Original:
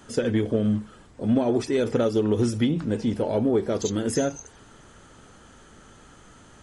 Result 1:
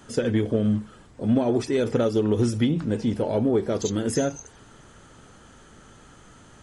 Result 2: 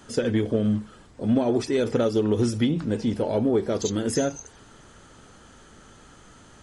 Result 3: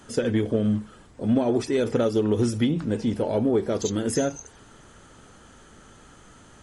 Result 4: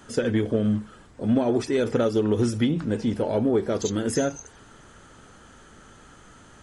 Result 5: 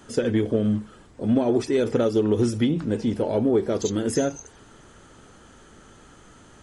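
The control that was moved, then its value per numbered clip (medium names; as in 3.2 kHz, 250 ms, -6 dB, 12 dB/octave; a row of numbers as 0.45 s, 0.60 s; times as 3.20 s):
peaking EQ, frequency: 130 Hz, 4.6 kHz, 12 kHz, 1.5 kHz, 360 Hz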